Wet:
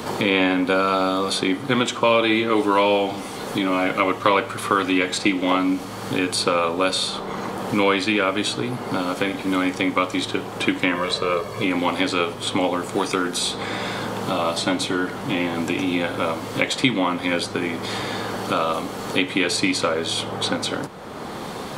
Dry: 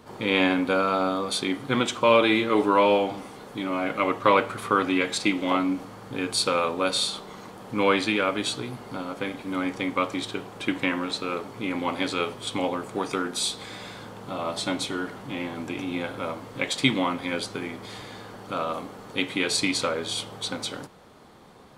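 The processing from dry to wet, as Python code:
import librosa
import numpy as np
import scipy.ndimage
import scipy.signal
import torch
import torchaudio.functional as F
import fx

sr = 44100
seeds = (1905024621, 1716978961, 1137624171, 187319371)

y = fx.comb(x, sr, ms=1.8, depth=0.75, at=(10.95, 11.64))
y = fx.band_squash(y, sr, depth_pct=70)
y = y * 10.0 ** (4.5 / 20.0)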